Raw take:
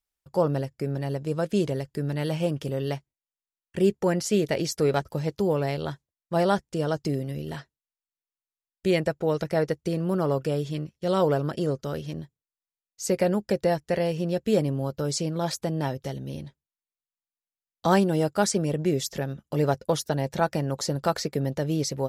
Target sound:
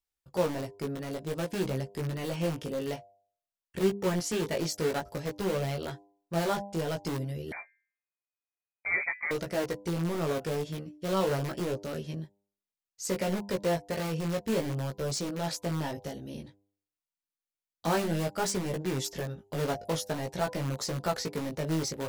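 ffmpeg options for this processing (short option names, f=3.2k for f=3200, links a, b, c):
-filter_complex "[0:a]asplit=2[a][b];[b]aeval=exprs='(mod(11.2*val(0)+1,2)-1)/11.2':c=same,volume=-7dB[c];[a][c]amix=inputs=2:normalize=0,flanger=delay=15.5:depth=3.1:speed=0.53,bandreject=f=100.1:t=h:w=4,bandreject=f=200.2:t=h:w=4,bandreject=f=300.3:t=h:w=4,bandreject=f=400.4:t=h:w=4,bandreject=f=500.5:t=h:w=4,bandreject=f=600.6:t=h:w=4,bandreject=f=700.7:t=h:w=4,bandreject=f=800.8:t=h:w=4,bandreject=f=900.9:t=h:w=4,bandreject=f=1.001k:t=h:w=4,asettb=1/sr,asplit=3[d][e][f];[d]atrim=end=7.524[g];[e]atrim=start=7.52:end=9.31,asetpts=PTS-STARTPTS,afade=t=in:d=0.004:c=qsin,afade=t=out:st=1.786:d=0.004:c=qsin,lowpass=f=2.1k:t=q:w=0.5098,lowpass=f=2.1k:t=q:w=0.6013,lowpass=f=2.1k:t=q:w=0.9,lowpass=f=2.1k:t=q:w=2.563,afreqshift=-2500[h];[f]atrim=start=9.306[i];[g][h]acrossfade=d=0.004:c1=hsin:c2=qsin[j];[j][i]acrossfade=d=0.004:c1=qsin:c2=hsin,volume=-3.5dB"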